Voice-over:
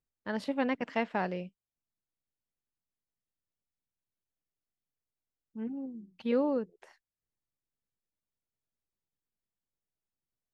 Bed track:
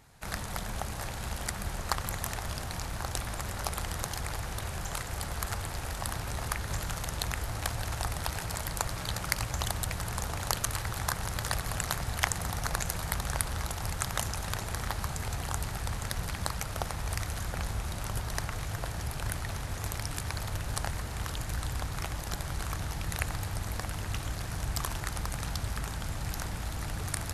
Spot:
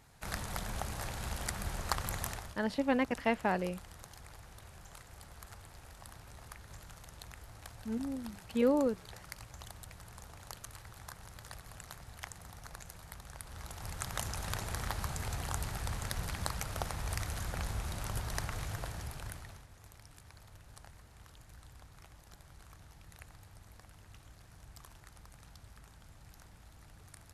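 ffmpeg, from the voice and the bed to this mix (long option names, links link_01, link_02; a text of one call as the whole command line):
ffmpeg -i stem1.wav -i stem2.wav -filter_complex "[0:a]adelay=2300,volume=0.5dB[link_01];[1:a]volume=10.5dB,afade=type=out:start_time=2.23:duration=0.32:silence=0.199526,afade=type=in:start_time=13.4:duration=1.11:silence=0.211349,afade=type=out:start_time=18.63:duration=1.05:silence=0.133352[link_02];[link_01][link_02]amix=inputs=2:normalize=0" out.wav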